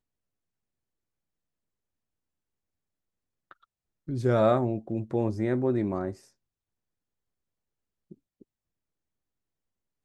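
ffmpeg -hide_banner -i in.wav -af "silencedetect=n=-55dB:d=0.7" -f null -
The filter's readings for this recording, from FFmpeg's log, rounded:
silence_start: 0.00
silence_end: 3.51 | silence_duration: 3.51
silence_start: 6.29
silence_end: 8.11 | silence_duration: 1.82
silence_start: 8.43
silence_end: 10.05 | silence_duration: 1.62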